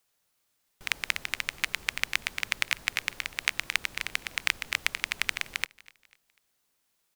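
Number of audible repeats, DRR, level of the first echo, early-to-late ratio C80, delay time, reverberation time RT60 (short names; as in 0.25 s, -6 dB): 2, none, -23.0 dB, none, 0.247 s, none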